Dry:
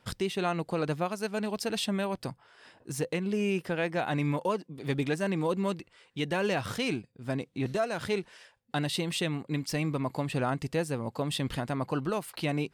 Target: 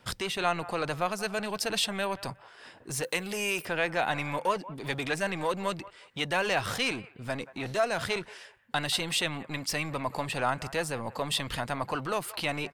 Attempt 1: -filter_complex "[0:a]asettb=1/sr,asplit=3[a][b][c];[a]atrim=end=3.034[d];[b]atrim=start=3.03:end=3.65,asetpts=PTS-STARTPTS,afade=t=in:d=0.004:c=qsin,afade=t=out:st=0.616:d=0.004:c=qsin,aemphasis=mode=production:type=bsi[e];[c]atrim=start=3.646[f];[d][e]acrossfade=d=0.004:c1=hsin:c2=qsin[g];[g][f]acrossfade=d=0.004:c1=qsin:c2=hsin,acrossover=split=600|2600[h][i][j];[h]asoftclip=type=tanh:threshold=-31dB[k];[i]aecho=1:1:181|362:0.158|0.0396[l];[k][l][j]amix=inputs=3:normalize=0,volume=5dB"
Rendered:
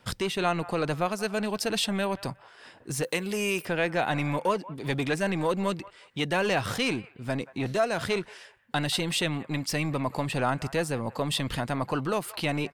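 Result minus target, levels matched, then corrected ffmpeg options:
soft clip: distortion -6 dB
-filter_complex "[0:a]asettb=1/sr,asplit=3[a][b][c];[a]atrim=end=3.034[d];[b]atrim=start=3.03:end=3.65,asetpts=PTS-STARTPTS,afade=t=in:d=0.004:c=qsin,afade=t=out:st=0.616:d=0.004:c=qsin,aemphasis=mode=production:type=bsi[e];[c]atrim=start=3.646[f];[d][e]acrossfade=d=0.004:c1=hsin:c2=qsin[g];[g][f]acrossfade=d=0.004:c1=qsin:c2=hsin,acrossover=split=600|2600[h][i][j];[h]asoftclip=type=tanh:threshold=-41dB[k];[i]aecho=1:1:181|362:0.158|0.0396[l];[k][l][j]amix=inputs=3:normalize=0,volume=5dB"

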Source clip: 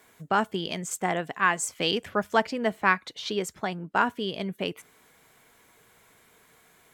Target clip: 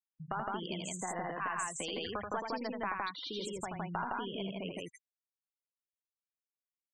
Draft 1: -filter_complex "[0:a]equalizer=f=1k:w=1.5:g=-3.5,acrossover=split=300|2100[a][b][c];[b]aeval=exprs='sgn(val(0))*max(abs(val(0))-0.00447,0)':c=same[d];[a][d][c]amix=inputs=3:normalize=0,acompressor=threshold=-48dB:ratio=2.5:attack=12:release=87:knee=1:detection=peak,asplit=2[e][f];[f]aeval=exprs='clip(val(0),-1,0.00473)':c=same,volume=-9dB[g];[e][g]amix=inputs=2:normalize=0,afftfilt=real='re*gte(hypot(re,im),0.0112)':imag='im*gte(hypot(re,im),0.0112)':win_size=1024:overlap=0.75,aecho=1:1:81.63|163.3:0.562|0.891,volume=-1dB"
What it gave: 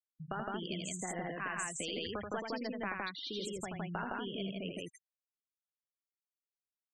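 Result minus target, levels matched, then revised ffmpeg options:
1000 Hz band -3.5 dB
-filter_complex "[0:a]equalizer=f=1k:w=1.5:g=6.5,acrossover=split=300|2100[a][b][c];[b]aeval=exprs='sgn(val(0))*max(abs(val(0))-0.00447,0)':c=same[d];[a][d][c]amix=inputs=3:normalize=0,acompressor=threshold=-48dB:ratio=2.5:attack=12:release=87:knee=1:detection=peak,asplit=2[e][f];[f]aeval=exprs='clip(val(0),-1,0.00473)':c=same,volume=-9dB[g];[e][g]amix=inputs=2:normalize=0,afftfilt=real='re*gte(hypot(re,im),0.0112)':imag='im*gte(hypot(re,im),0.0112)':win_size=1024:overlap=0.75,aecho=1:1:81.63|163.3:0.562|0.891,volume=-1dB"

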